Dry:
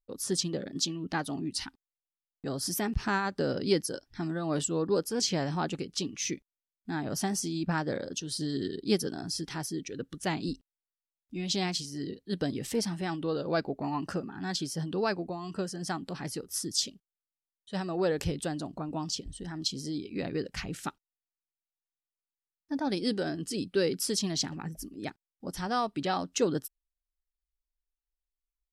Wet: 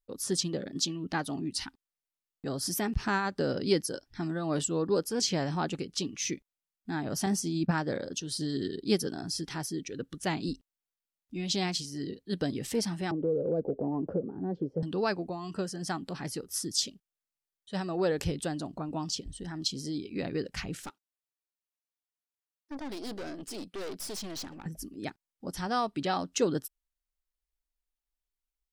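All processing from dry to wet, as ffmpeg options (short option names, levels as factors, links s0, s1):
-filter_complex "[0:a]asettb=1/sr,asplit=3[s0][s1][s2];[s0]atrim=end=7.264[s3];[s1]atrim=start=7.26:end=7.71,asetpts=PTS-STARTPTS,afade=t=in:d=0.004:c=qsin,afade=t=out:st=0.446:d=0.004:c=qsin,agate=range=0.0224:threshold=0.0251:ratio=3:release=100:detection=peak,equalizer=f=180:t=o:w=2.4:g=4.5[s4];[s2]atrim=start=7.706[s5];[s3][s4]acrossfade=d=0.004:c1=hsin:c2=qsin[s6];[s6][s5]acrossfade=d=0.004:c1=qsin:c2=hsin,asettb=1/sr,asplit=3[s7][s8][s9];[s7]atrim=end=13.114[s10];[s8]atrim=start=13.11:end=14.83,asetpts=PTS-STARTPTS,afade=t=in:d=0.004:c=qsin,afade=t=out:st=1.716:d=0.004:c=qsin,lowpass=f=490:t=q:w=5.9,acrossover=split=240|3000[s11][s12][s13];[s12]acompressor=threshold=0.0355:ratio=6:attack=3.2:release=140:knee=2.83:detection=peak[s14];[s11][s14][s13]amix=inputs=3:normalize=0[s15];[s9]atrim=start=14.826[s16];[s10][s15]acrossfade=d=0.004:c1=hsin:c2=qsin[s17];[s17][s16]acrossfade=d=0.004:c1=qsin:c2=hsin,asettb=1/sr,asplit=3[s18][s19][s20];[s18]atrim=end=20.824[s21];[s19]atrim=start=20.82:end=24.66,asetpts=PTS-STARTPTS,afade=t=in:d=0.004:c=qsin,afade=t=out:st=3.836:d=0.004:c=qsin,highpass=220,aeval=exprs='(tanh(63.1*val(0)+0.55)-tanh(0.55))/63.1':c=same[s22];[s20]atrim=start=24.656[s23];[s21][s22]acrossfade=d=0.004:c1=hsin:c2=qsin[s24];[s24][s23]acrossfade=d=0.004:c1=qsin:c2=hsin"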